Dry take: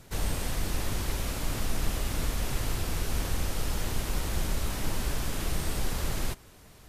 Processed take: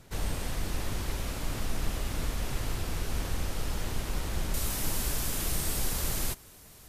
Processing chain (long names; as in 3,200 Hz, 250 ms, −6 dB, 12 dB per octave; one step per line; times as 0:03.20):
high-shelf EQ 5,800 Hz −2.5 dB, from 0:04.54 +11.5 dB
level −2 dB